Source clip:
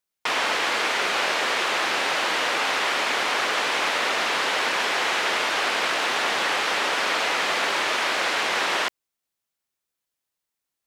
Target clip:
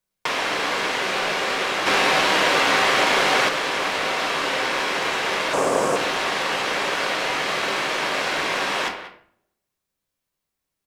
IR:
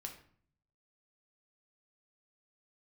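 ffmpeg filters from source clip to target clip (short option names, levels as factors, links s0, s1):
-filter_complex "[0:a]acrossover=split=180|1800[s0][s1][s2];[s0]acompressor=threshold=0.00112:ratio=4[s3];[s1]acompressor=threshold=0.0282:ratio=4[s4];[s2]acompressor=threshold=0.0316:ratio=4[s5];[s3][s4][s5]amix=inputs=3:normalize=0,lowshelf=f=490:g=9,asplit=2[s6][s7];[s7]adelay=190,highpass=300,lowpass=3400,asoftclip=type=hard:threshold=0.0708,volume=0.316[s8];[s6][s8]amix=inputs=2:normalize=0,aeval=exprs='0.211*(cos(1*acos(clip(val(0)/0.211,-1,1)))-cos(1*PI/2))+0.0075*(cos(7*acos(clip(val(0)/0.211,-1,1)))-cos(7*PI/2))':c=same,asettb=1/sr,asplit=3[s9][s10][s11];[s9]atrim=end=5.534[s12];[s10]atrim=start=5.53:end=5.96,asetpts=PTS-STARTPTS,afade=t=in:d=0.004:c=qsin,afade=t=out:st=0.426:d=0.004:c=qsin,equalizer=f=125:t=o:w=1:g=7,equalizer=f=250:t=o:w=1:g=5,equalizer=f=500:t=o:w=1:g=9,equalizer=f=1000:t=o:w=1:g=4,equalizer=f=2000:t=o:w=1:g=-6,equalizer=f=4000:t=o:w=1:g=-10,equalizer=f=8000:t=o:w=1:g=11[s13];[s11]atrim=start=5.956[s14];[s12][s13]acrossfade=d=0.004:c1=hsin:c2=qsin[s15];[s15][s14]acrossfade=d=0.004:c1=qsin:c2=hsin[s16];[1:a]atrim=start_sample=2205[s17];[s16][s17]afir=irnorm=-1:irlink=0,asettb=1/sr,asplit=3[s18][s19][s20];[s18]atrim=end=1.864[s21];[s19]atrim=start=1.86:end=3.49,asetpts=PTS-STARTPTS,afade=t=in:d=0.004:c=qsin,afade=t=out:st=1.626:d=0.004:c=qsin,acontrast=33[s22];[s20]atrim=start=3.486[s23];[s21][s22]acrossfade=d=0.004:c1=hsin:c2=qsin[s24];[s24][s23]acrossfade=d=0.004:c1=qsin:c2=hsin,volume=2.37"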